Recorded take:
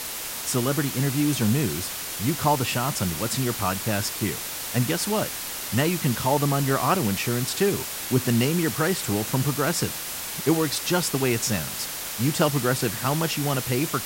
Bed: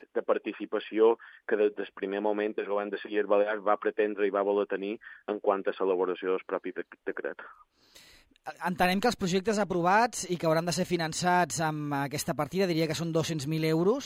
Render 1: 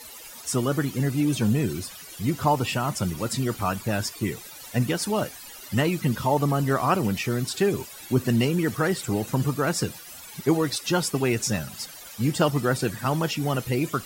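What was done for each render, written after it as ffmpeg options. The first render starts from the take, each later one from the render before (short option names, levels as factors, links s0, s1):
-af "afftdn=nr=16:nf=-33"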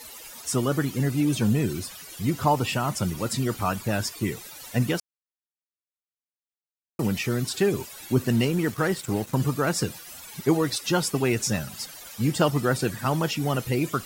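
-filter_complex "[0:a]asettb=1/sr,asplit=3[s0][s1][s2];[s0]atrim=end=8.254[s3];[s1]atrim=start=8.25:end=9.34,asetpts=PTS-STARTPTS,afade=t=in:d=0.004:c=qsin,afade=t=out:st=1.086:d=0.004:c=qsin,aeval=exprs='sgn(val(0))*max(abs(val(0))-0.00794,0)':c=same[s4];[s2]atrim=start=9.336[s5];[s3][s4]acrossfade=d=0.004:c1=hsin:c2=qsin[s6];[s6][s5]acrossfade=d=0.004:c1=qsin:c2=hsin,asplit=3[s7][s8][s9];[s7]atrim=end=5,asetpts=PTS-STARTPTS,afade=t=out:st=4.996:d=0.004:c=hsin[s10];[s8]atrim=start=5:end=6.99,asetpts=PTS-STARTPTS,volume=0[s11];[s9]atrim=start=6.99,asetpts=PTS-STARTPTS,afade=t=in:d=0.004:c=hsin[s12];[s10][s11][s12]concat=n=3:v=0:a=1"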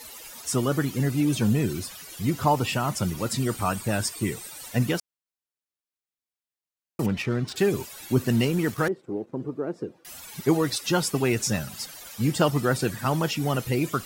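-filter_complex "[0:a]asettb=1/sr,asplit=3[s0][s1][s2];[s0]atrim=end=3.404[s3];[s1]atrim=start=3.4:end=4.68,asetpts=PTS-STARTPTS,afade=t=in:d=0.004:c=qsin,afade=t=out:st=1.276:d=0.004:c=qsin,equalizer=f=8500:w=7.7:g=11.5[s4];[s2]atrim=start=4.676[s5];[s3][s4]acrossfade=d=0.004:c1=hsin:c2=qsin[s6];[s6][s5]acrossfade=d=0.004:c1=qsin:c2=hsin,asettb=1/sr,asplit=3[s7][s8][s9];[s7]atrim=end=7.064[s10];[s8]atrim=start=7.06:end=7.56,asetpts=PTS-STARTPTS,afade=t=in:d=0.004:c=qsin,afade=t=out:st=0.496:d=0.004:c=qsin,adynamicsmooth=sensitivity=3.5:basefreq=2200[s11];[s9]atrim=start=7.556[s12];[s10][s11]acrossfade=d=0.004:c1=hsin:c2=qsin[s13];[s13][s12]acrossfade=d=0.004:c1=qsin:c2=hsin,asettb=1/sr,asplit=3[s14][s15][s16];[s14]atrim=end=8.884[s17];[s15]atrim=start=8.88:end=10.05,asetpts=PTS-STARTPTS,afade=t=in:d=0.004:c=qsin,afade=t=out:st=1.166:d=0.004:c=qsin,bandpass=f=370:t=q:w=2[s18];[s16]atrim=start=10.046[s19];[s17][s18]acrossfade=d=0.004:c1=hsin:c2=qsin[s20];[s20][s19]acrossfade=d=0.004:c1=qsin:c2=hsin"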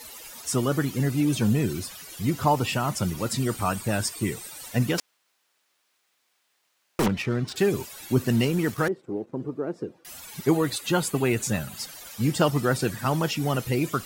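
-filter_complex "[0:a]asettb=1/sr,asplit=3[s0][s1][s2];[s0]atrim=end=4.984[s3];[s1]atrim=start=4.98:end=7.08,asetpts=PTS-STARTPTS,afade=t=in:d=0.004:c=qsin,afade=t=out:st=2.096:d=0.004:c=qsin,asplit=2[s4][s5];[s5]highpass=f=720:p=1,volume=50.1,asoftclip=type=tanh:threshold=0.178[s6];[s4][s6]amix=inputs=2:normalize=0,lowpass=f=3700:p=1,volume=0.501[s7];[s2]atrim=start=7.076[s8];[s3][s7]acrossfade=d=0.004:c1=hsin:c2=qsin[s9];[s9][s8]acrossfade=d=0.004:c1=qsin:c2=hsin,asettb=1/sr,asplit=3[s10][s11][s12];[s10]atrim=end=10.504[s13];[s11]atrim=start=10.5:end=11.77,asetpts=PTS-STARTPTS,afade=t=in:d=0.004:c=qsin,afade=t=out:st=1.266:d=0.004:c=qsin,equalizer=f=5400:w=5.2:g=-11.5[s14];[s12]atrim=start=11.766[s15];[s13][s14]acrossfade=d=0.004:c1=hsin:c2=qsin[s16];[s16][s15]acrossfade=d=0.004:c1=qsin:c2=hsin"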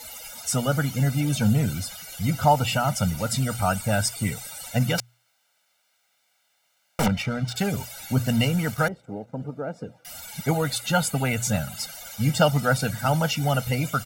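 -af "bandreject=f=60:t=h:w=6,bandreject=f=120:t=h:w=6,aecho=1:1:1.4:0.89"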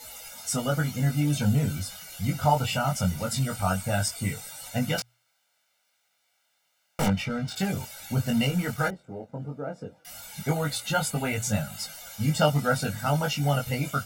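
-af "flanger=delay=19.5:depth=2.1:speed=0.17"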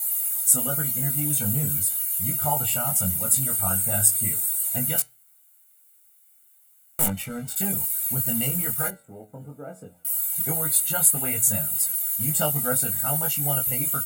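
-af "flanger=delay=2.2:depth=9.2:regen=86:speed=0.15:shape=triangular,aexciter=amount=15.1:drive=5.3:freq=7900"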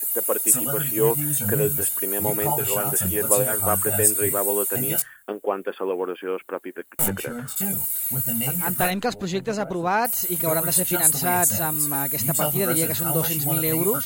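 -filter_complex "[1:a]volume=1.19[s0];[0:a][s0]amix=inputs=2:normalize=0"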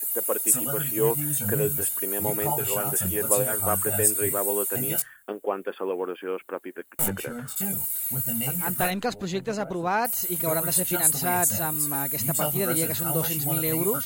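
-af "volume=0.708"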